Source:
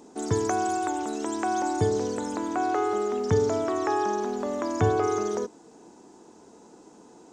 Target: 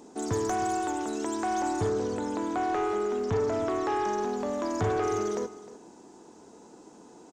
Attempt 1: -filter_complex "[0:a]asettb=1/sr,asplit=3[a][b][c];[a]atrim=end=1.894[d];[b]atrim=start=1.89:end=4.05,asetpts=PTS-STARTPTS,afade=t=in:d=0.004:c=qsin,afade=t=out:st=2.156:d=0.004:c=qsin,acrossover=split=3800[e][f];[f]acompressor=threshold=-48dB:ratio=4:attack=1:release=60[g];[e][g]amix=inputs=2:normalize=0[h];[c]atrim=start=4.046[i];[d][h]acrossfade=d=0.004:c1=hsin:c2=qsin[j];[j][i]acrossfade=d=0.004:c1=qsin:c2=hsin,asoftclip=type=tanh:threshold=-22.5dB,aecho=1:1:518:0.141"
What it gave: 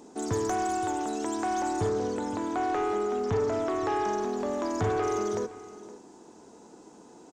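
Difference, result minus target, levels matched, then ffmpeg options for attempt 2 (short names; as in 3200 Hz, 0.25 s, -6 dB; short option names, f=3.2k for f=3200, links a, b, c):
echo 0.209 s late
-filter_complex "[0:a]asettb=1/sr,asplit=3[a][b][c];[a]atrim=end=1.894[d];[b]atrim=start=1.89:end=4.05,asetpts=PTS-STARTPTS,afade=t=in:d=0.004:c=qsin,afade=t=out:st=2.156:d=0.004:c=qsin,acrossover=split=3800[e][f];[f]acompressor=threshold=-48dB:ratio=4:attack=1:release=60[g];[e][g]amix=inputs=2:normalize=0[h];[c]atrim=start=4.046[i];[d][h]acrossfade=d=0.004:c1=hsin:c2=qsin[j];[j][i]acrossfade=d=0.004:c1=qsin:c2=hsin,asoftclip=type=tanh:threshold=-22.5dB,aecho=1:1:309:0.141"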